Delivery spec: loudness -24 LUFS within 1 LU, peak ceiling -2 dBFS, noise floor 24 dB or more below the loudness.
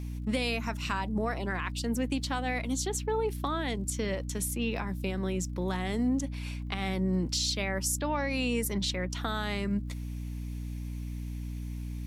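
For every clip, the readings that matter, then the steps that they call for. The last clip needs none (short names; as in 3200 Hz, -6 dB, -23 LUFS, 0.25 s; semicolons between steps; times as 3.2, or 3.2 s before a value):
ticks 45/s; hum 60 Hz; harmonics up to 300 Hz; hum level -34 dBFS; loudness -32.0 LUFS; peak -17.0 dBFS; loudness target -24.0 LUFS
-> de-click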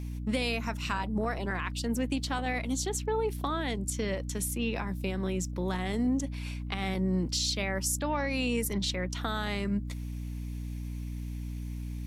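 ticks 0.41/s; hum 60 Hz; harmonics up to 300 Hz; hum level -34 dBFS
-> notches 60/120/180/240/300 Hz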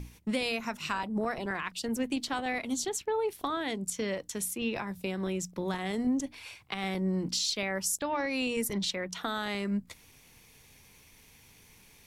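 hum none; loudness -32.5 LUFS; peak -16.5 dBFS; loudness target -24.0 LUFS
-> gain +8.5 dB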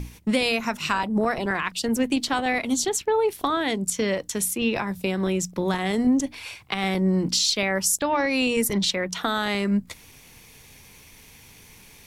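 loudness -24.0 LUFS; peak -8.0 dBFS; noise floor -50 dBFS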